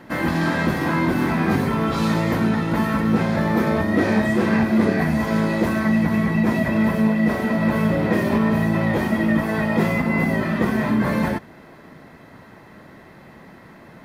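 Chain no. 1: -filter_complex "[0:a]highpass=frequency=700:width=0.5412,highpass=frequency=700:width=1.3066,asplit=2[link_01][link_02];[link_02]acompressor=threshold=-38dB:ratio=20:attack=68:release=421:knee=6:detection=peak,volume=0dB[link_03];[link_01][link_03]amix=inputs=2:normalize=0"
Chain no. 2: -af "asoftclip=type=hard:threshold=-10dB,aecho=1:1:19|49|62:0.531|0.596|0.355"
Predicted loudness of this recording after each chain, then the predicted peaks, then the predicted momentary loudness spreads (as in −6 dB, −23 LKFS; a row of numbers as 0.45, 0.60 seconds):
−25.0, −17.5 LKFS; −12.0, −4.5 dBFS; 19, 2 LU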